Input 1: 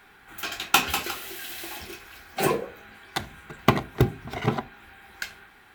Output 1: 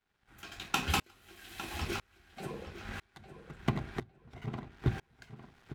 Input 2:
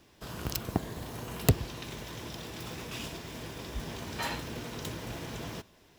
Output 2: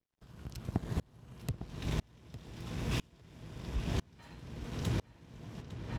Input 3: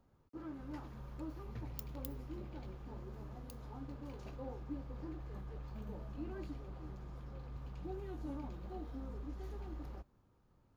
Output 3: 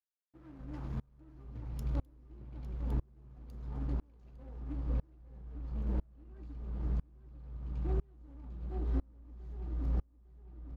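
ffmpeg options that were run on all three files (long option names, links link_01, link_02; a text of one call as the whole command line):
ffmpeg -i in.wav -filter_complex "[0:a]lowpass=11000,bass=frequency=250:gain=11,treble=frequency=4000:gain=-2,acompressor=threshold=-40dB:ratio=2,aeval=exprs='sgn(val(0))*max(abs(val(0))-0.00251,0)':channel_layout=same,asplit=2[link_01][link_02];[link_02]adelay=855,lowpass=frequency=4000:poles=1,volume=-6.5dB,asplit=2[link_03][link_04];[link_04]adelay=855,lowpass=frequency=4000:poles=1,volume=0.4,asplit=2[link_05][link_06];[link_06]adelay=855,lowpass=frequency=4000:poles=1,volume=0.4,asplit=2[link_07][link_08];[link_08]adelay=855,lowpass=frequency=4000:poles=1,volume=0.4,asplit=2[link_09][link_10];[link_10]adelay=855,lowpass=frequency=4000:poles=1,volume=0.4[link_11];[link_01][link_03][link_05][link_07][link_09][link_11]amix=inputs=6:normalize=0,aeval=exprs='val(0)*pow(10,-33*if(lt(mod(-1*n/s,1),2*abs(-1)/1000),1-mod(-1*n/s,1)/(2*abs(-1)/1000),(mod(-1*n/s,1)-2*abs(-1)/1000)/(1-2*abs(-1)/1000))/20)':channel_layout=same,volume=9.5dB" out.wav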